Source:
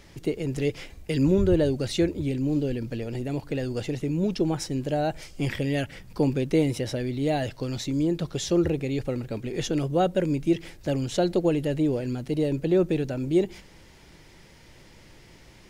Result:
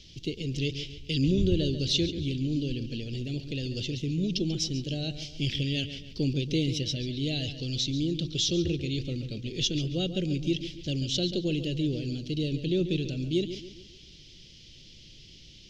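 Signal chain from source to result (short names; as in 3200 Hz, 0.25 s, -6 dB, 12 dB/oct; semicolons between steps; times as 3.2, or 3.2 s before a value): EQ curve 150 Hz 0 dB, 370 Hz -5 dB, 620 Hz -14 dB, 920 Hz -27 dB, 1900 Hz -13 dB, 3100 Hz +11 dB, 6000 Hz +6 dB, 9200 Hz -15 dB; on a send: darkening echo 0.139 s, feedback 43%, low-pass 4400 Hz, level -10.5 dB; on the sum: gain -1.5 dB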